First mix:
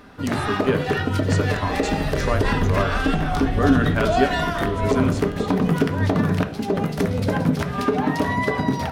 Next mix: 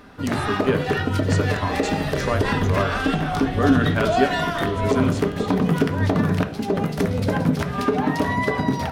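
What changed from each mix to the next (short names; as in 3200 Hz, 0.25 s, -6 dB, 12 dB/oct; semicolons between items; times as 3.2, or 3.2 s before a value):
second sound: add tilt +2 dB/oct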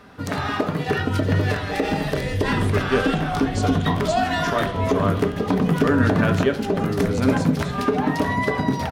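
speech: entry +2.25 s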